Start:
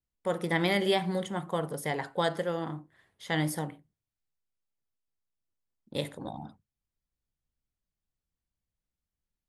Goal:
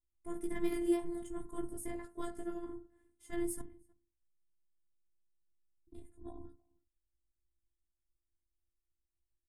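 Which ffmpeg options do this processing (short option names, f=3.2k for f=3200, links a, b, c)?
-filter_complex "[0:a]flanger=delay=16:depth=2.8:speed=0.35,asettb=1/sr,asplit=3[a][b][c];[a]atrim=end=3.614[d];[b]atrim=start=3.61:end=6.25,asetpts=PTS-STARTPTS,afade=t=in:d=0.004:c=qsin,afade=t=out:st=2.636:d=0.004:c=qsin,acrossover=split=160[e][f];[f]acompressor=threshold=-50dB:ratio=10[g];[e][g]amix=inputs=2:normalize=0[h];[c]atrim=start=6.246[i];[d][h]acrossfade=d=0.004:c1=hsin:c2=qsin[j];[j][i]acrossfade=d=0.004:c1=qsin:c2=hsin,asplit=2[k][l];[l]adelay=314.9,volume=-27dB,highshelf=f=4k:g=-7.08[m];[k][m]amix=inputs=2:normalize=0,tremolo=f=180:d=0.71,afftfilt=real='hypot(re,im)*cos(PI*b)':imag='0':win_size=512:overlap=0.75,adynamicsmooth=sensitivity=3.5:basefreq=6.3k,firequalizer=gain_entry='entry(110,0);entry(620,-21);entry(1100,-19);entry(3900,-27);entry(8600,4)':delay=0.05:min_phase=1,volume=13dB"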